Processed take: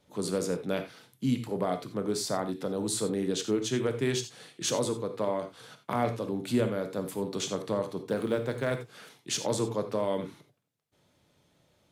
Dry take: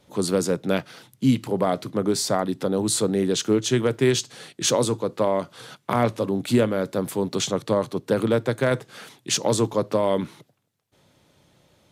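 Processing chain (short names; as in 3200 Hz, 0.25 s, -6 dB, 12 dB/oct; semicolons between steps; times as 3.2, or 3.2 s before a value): 8.03–8.87 G.711 law mismatch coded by A; non-linear reverb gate 0.11 s flat, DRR 7 dB; gain -8.5 dB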